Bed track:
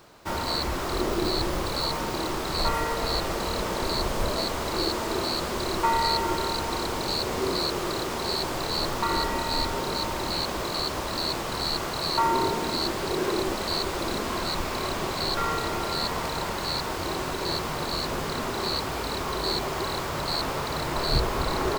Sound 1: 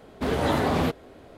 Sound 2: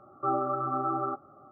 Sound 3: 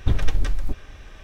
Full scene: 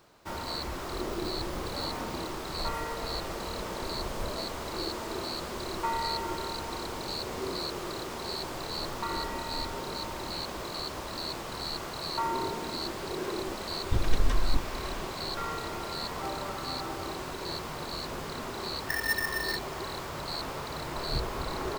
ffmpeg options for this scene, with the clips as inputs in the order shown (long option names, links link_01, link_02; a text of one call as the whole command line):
ffmpeg -i bed.wav -i cue0.wav -i cue1.wav -i cue2.wav -filter_complex "[3:a]asplit=2[link_01][link_02];[0:a]volume=-7.5dB[link_03];[link_01]dynaudnorm=framelen=180:gausssize=3:maxgain=11.5dB[link_04];[2:a]lowpass=1100[link_05];[link_02]aeval=exprs='val(0)*sgn(sin(2*PI*1800*n/s))':channel_layout=same[link_06];[1:a]atrim=end=1.37,asetpts=PTS-STARTPTS,volume=-18dB,afade=type=in:duration=0.004:curve=hsin,afade=type=out:start_time=1.366:duration=0.004:curve=hsin,adelay=1340[link_07];[link_04]atrim=end=1.23,asetpts=PTS-STARTPTS,volume=-8dB,afade=type=in:duration=0.004:curve=hsin,afade=type=out:start_time=1.226:duration=0.004:curve=hsin,adelay=13850[link_08];[link_05]atrim=end=1.51,asetpts=PTS-STARTPTS,volume=-8.5dB,afade=type=in:duration=0.004:curve=hsin,afade=type=out:start_time=1.506:duration=0.004:curve=hsin,adelay=15960[link_09];[link_06]atrim=end=1.23,asetpts=PTS-STARTPTS,volume=-16.5dB,afade=type=in:duration=0.004:curve=hsin,afade=type=out:start_time=1.226:duration=0.004:curve=hsin,adelay=18830[link_10];[link_03][link_07][link_08][link_09][link_10]amix=inputs=5:normalize=0" out.wav